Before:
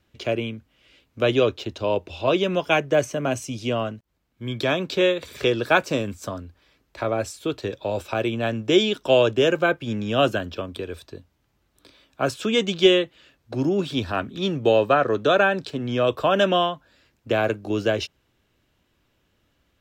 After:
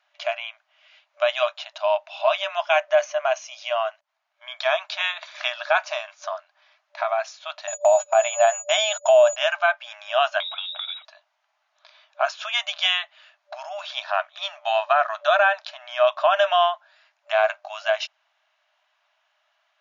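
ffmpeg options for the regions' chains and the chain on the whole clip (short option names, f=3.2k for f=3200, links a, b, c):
-filter_complex "[0:a]asettb=1/sr,asplit=3[a][b][c];[a]atrim=end=7.674[d];[b]atrim=start=7.67:end=9.36,asetpts=PTS-STARTPTS,afade=t=in:d=0.004:c=qsin,afade=t=out:st=1.686:d=0.004:c=qsin,equalizer=f=580:w=1:g=12.5,aeval=exprs='val(0)+0.0447*sin(2*PI*6900*n/s)':c=same,agate=range=-30dB:threshold=-26dB:ratio=16:release=100:detection=peak[e];[c]atrim=start=9.356[f];[d][e]acrossfade=d=0.004:c1=hsin:c2=qsin[g];[g][f]acrossfade=d=0.004:c1=qsin:c2=hsin,asettb=1/sr,asplit=3[h][i][j];[h]atrim=end=10.404[k];[i]atrim=start=10.4:end=11.05,asetpts=PTS-STARTPTS,afade=t=in:d=0.004:c=qsin,afade=t=out:st=0.646:d=0.004:c=qsin,lowpass=f=3.3k:t=q:w=0.5098,lowpass=f=3.3k:t=q:w=0.6013,lowpass=f=3.3k:t=q:w=0.9,lowpass=f=3.3k:t=q:w=2.563,afreqshift=-3900,aemphasis=mode=production:type=75kf,acompressor=threshold=-28dB:ratio=6:attack=3.2:release=140:knee=1:detection=peak[l];[j]atrim=start=11.046[m];[k][l]acrossfade=d=0.004:c1=hsin:c2=qsin[n];[n][m]acrossfade=d=0.004:c1=qsin:c2=hsin,afftfilt=real='re*between(b*sr/4096,590,7100)':imag='im*between(b*sr/4096,590,7100)':win_size=4096:overlap=0.75,highshelf=f=3.8k:g=-10,alimiter=level_in=12.5dB:limit=-1dB:release=50:level=0:latency=1,volume=-7dB"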